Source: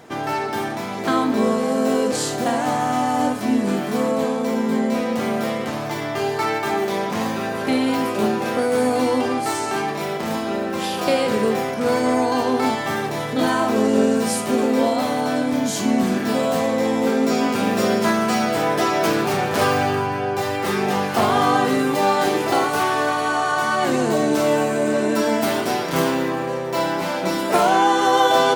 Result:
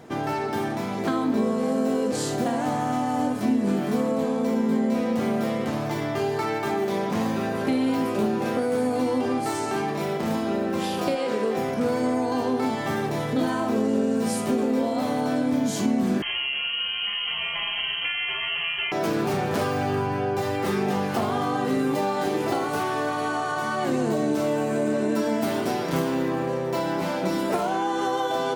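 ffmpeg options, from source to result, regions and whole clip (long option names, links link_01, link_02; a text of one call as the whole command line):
ffmpeg -i in.wav -filter_complex "[0:a]asettb=1/sr,asplit=3[link_01][link_02][link_03];[link_01]atrim=end=11.154[link_04];[link_02]atrim=start=11.15:end=11.57,asetpts=PTS-STARTPTS,afade=type=in:duration=0.004:curve=qsin,afade=type=out:start_time=0.416:duration=0.004:curve=qsin,highpass=310,acrossover=split=8300[link_05][link_06];[link_06]acompressor=threshold=-51dB:ratio=4:attack=1:release=60[link_07];[link_05][link_07]amix=inputs=2:normalize=0[link_08];[link_03]atrim=start=11.566[link_09];[link_04][link_08]acrossfade=duration=0.004:curve1=hsin:curve2=qsin[link_10];[link_10][link_09]acrossfade=duration=0.004:curve1=qsin:curve2=hsin,asettb=1/sr,asplit=3[link_11][link_12][link_13];[link_11]atrim=end=16.224[link_14];[link_12]atrim=start=16.22:end=18.92,asetpts=PTS-STARTPTS,afade=type=in:duration=0.004:curve=qsin,afade=type=out:start_time=2.696:duration=0.004:curve=qsin,highpass=frequency=260:poles=1,aecho=1:1:5.9:0.7,atrim=end_sample=119070,lowpass=frequency=2900:width_type=q:width=0.5098,lowpass=frequency=2900:width_type=q:width=0.6013,lowpass=frequency=2900:width_type=q:width=0.9,lowpass=frequency=2900:width_type=q:width=2.563,afreqshift=-3400[link_15];[link_13]atrim=start=18.916[link_16];[link_14][link_15]acrossfade=duration=0.004:curve1=hsin:curve2=qsin[link_17];[link_17][link_16]acrossfade=duration=0.004:curve1=qsin:curve2=hsin,lowshelf=frequency=140:gain=-3,acompressor=threshold=-20dB:ratio=6,lowshelf=frequency=440:gain=9,volume=-5dB" out.wav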